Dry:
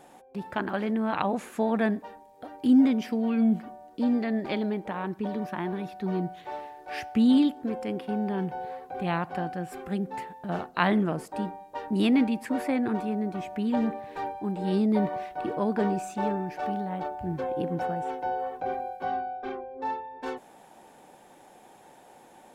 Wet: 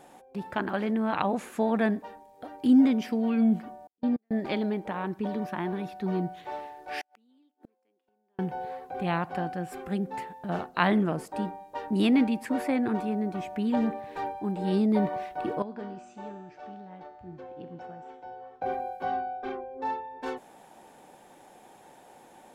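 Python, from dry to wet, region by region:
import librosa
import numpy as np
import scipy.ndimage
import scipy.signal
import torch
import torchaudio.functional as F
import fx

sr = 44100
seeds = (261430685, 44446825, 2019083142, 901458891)

y = fx.chain(x, sr, fx.high_shelf(hz=4600.0, db=-10.5),
    fx.level_steps(step_db=24),
    fx.upward_expand(threshold_db=-44.0, expansion=2.5), at=(3.87, 4.31))
y = fx.chain(y, sr, fx.highpass(hz=270.0, slope=24),
    fx.gate_flip(shuts_db=-31.0, range_db=-41), at=(7.01, 8.39))
y = fx.chain(y, sr, fx.lowpass(hz=6800.0, slope=24),
    fx.comb_fb(f0_hz=120.0, decay_s=1.4, harmonics='all', damping=0.0, mix_pct=80), at=(15.62, 18.62))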